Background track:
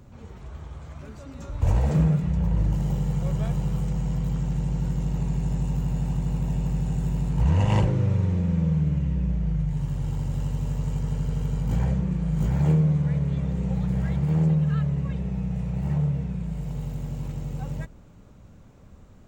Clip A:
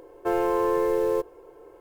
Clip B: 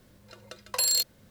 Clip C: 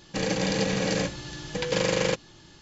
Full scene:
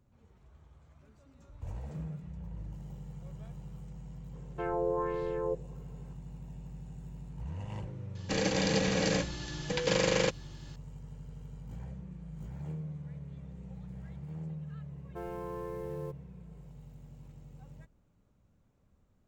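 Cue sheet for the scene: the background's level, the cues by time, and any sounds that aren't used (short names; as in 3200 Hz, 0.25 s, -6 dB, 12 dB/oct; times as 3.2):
background track -19.5 dB
4.33 add A -11.5 dB + LFO low-pass sine 1.4 Hz 550–4100 Hz
8.15 add C -3 dB
14.9 add A -17 dB
not used: B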